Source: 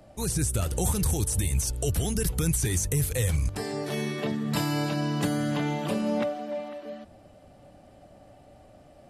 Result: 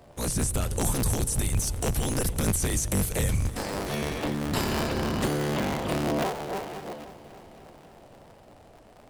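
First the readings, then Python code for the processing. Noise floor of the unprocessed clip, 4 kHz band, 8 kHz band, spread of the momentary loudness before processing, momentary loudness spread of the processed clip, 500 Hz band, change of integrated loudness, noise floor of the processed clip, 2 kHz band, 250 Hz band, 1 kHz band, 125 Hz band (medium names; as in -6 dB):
-54 dBFS, +1.5 dB, 0.0 dB, 7 LU, 8 LU, +0.5 dB, 0.0 dB, -53 dBFS, +2.0 dB, -0.5 dB, +3.0 dB, -1.5 dB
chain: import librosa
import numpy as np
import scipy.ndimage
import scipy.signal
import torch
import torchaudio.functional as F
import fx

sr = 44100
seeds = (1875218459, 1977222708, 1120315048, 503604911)

y = fx.cycle_switch(x, sr, every=3, mode='inverted')
y = fx.echo_heads(y, sr, ms=271, heads='all three', feedback_pct=48, wet_db=-23.0)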